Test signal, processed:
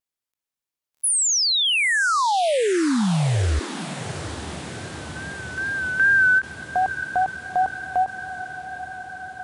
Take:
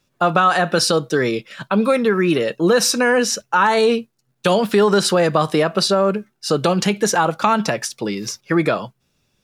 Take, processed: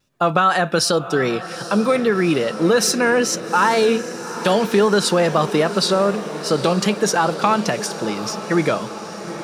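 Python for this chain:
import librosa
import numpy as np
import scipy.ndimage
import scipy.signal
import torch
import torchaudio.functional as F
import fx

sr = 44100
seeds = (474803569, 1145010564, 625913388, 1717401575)

y = fx.vibrato(x, sr, rate_hz=2.5, depth_cents=55.0)
y = fx.echo_diffused(y, sr, ms=826, feedback_pct=70, wet_db=-13)
y = fx.end_taper(y, sr, db_per_s=420.0)
y = F.gain(torch.from_numpy(y), -1.0).numpy()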